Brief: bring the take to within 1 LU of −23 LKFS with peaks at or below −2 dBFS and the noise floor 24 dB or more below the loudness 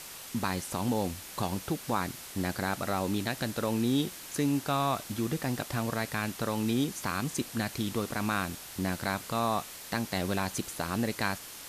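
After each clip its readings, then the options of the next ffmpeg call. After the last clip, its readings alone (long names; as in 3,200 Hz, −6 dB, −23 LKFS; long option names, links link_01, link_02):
background noise floor −45 dBFS; target noise floor −56 dBFS; integrated loudness −32.0 LKFS; sample peak −14.5 dBFS; target loudness −23.0 LKFS
→ -af "afftdn=noise_reduction=11:noise_floor=-45"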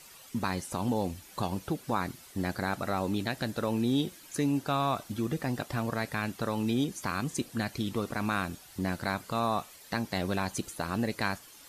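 background noise floor −53 dBFS; target noise floor −57 dBFS
→ -af "afftdn=noise_reduction=6:noise_floor=-53"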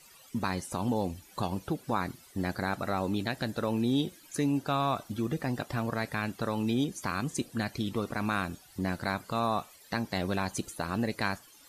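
background noise floor −56 dBFS; target noise floor −57 dBFS
→ -af "afftdn=noise_reduction=6:noise_floor=-56"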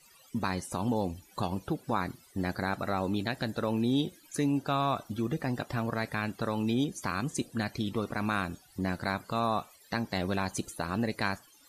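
background noise floor −60 dBFS; integrated loudness −32.5 LKFS; sample peak −14.5 dBFS; target loudness −23.0 LKFS
→ -af "volume=9.5dB"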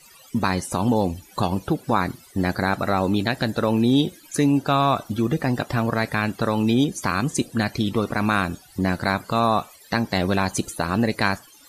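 integrated loudness −23.0 LKFS; sample peak −5.0 dBFS; background noise floor −50 dBFS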